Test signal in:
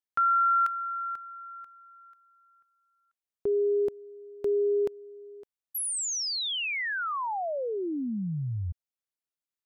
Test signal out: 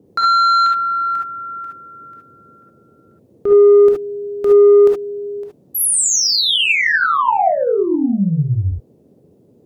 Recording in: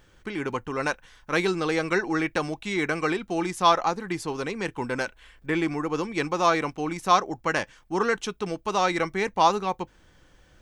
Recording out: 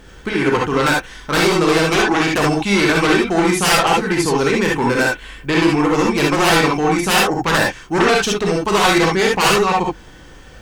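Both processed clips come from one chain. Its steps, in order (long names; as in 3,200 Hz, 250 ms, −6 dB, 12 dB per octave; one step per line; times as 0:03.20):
sine wavefolder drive 15 dB, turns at −7 dBFS
reverb whose tail is shaped and stops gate 90 ms rising, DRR −2 dB
noise in a band 92–480 Hz −45 dBFS
level −6.5 dB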